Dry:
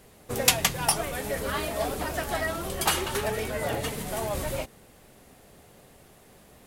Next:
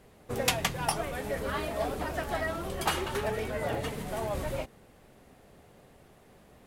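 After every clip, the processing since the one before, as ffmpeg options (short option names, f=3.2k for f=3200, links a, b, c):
-af "highshelf=f=4k:g=-9.5,volume=-2dB"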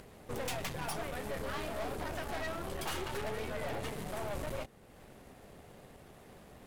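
-filter_complex "[0:a]asplit=2[a][b];[b]acompressor=mode=upward:threshold=-37dB:ratio=2.5,volume=1dB[c];[a][c]amix=inputs=2:normalize=0,aeval=exprs='(tanh(28.2*val(0)+0.75)-tanh(0.75))/28.2':c=same,volume=-6dB"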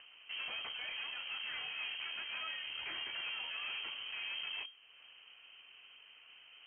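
-filter_complex "[0:a]acrossover=split=1100[a][b];[b]asoftclip=type=tanh:threshold=-35.5dB[c];[a][c]amix=inputs=2:normalize=0,lowpass=f=2.7k:t=q:w=0.5098,lowpass=f=2.7k:t=q:w=0.6013,lowpass=f=2.7k:t=q:w=0.9,lowpass=f=2.7k:t=q:w=2.563,afreqshift=-3200,volume=-4dB"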